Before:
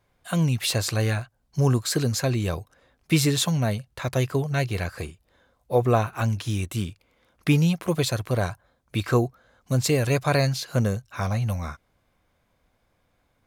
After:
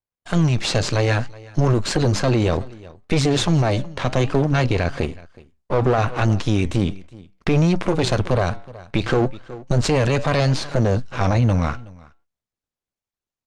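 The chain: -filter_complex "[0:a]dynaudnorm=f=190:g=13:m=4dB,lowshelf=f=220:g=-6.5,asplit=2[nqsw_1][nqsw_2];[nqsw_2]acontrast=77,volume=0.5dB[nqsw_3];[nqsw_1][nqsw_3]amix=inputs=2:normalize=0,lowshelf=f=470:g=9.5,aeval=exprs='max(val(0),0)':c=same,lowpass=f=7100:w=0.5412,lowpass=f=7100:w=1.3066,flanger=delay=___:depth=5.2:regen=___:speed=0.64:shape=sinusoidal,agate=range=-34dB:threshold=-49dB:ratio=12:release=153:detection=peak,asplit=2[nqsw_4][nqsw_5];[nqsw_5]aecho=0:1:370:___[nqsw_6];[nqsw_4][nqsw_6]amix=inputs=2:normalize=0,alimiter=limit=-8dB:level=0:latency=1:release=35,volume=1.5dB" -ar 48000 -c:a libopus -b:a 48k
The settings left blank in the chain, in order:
2.7, -90, 0.0668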